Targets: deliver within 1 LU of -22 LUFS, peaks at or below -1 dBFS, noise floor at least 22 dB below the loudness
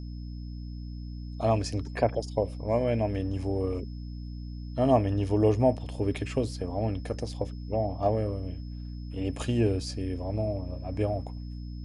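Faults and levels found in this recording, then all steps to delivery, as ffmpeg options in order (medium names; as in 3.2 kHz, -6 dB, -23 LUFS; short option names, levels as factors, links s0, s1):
hum 60 Hz; highest harmonic 300 Hz; hum level -35 dBFS; steady tone 5.2 kHz; tone level -58 dBFS; loudness -29.5 LUFS; peak level -10.5 dBFS; loudness target -22.0 LUFS
-> -af "bandreject=f=60:t=h:w=6,bandreject=f=120:t=h:w=6,bandreject=f=180:t=h:w=6,bandreject=f=240:t=h:w=6,bandreject=f=300:t=h:w=6"
-af "bandreject=f=5200:w=30"
-af "volume=2.37"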